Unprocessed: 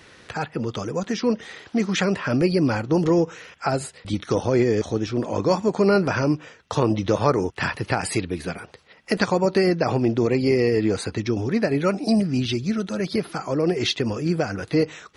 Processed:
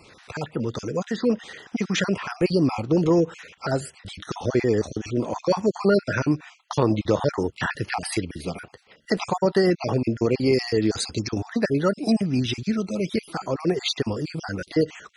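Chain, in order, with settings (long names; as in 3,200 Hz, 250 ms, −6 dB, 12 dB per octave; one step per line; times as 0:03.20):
time-frequency cells dropped at random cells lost 34%
0:10.53–0:11.38: high shelf with overshoot 3,300 Hz +6 dB, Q 1.5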